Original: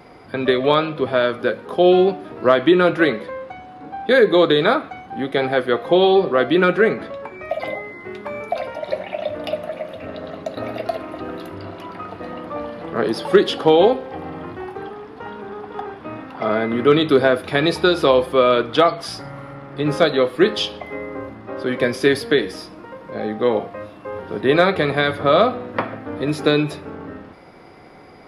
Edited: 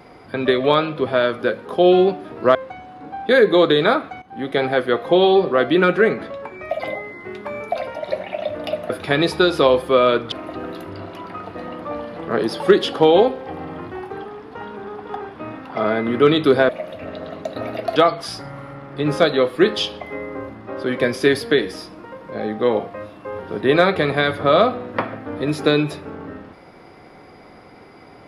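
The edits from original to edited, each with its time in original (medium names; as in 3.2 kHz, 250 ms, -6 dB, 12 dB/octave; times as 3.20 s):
2.55–3.35 s: delete
5.02–5.31 s: fade in, from -13.5 dB
9.70–10.97 s: swap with 17.34–18.76 s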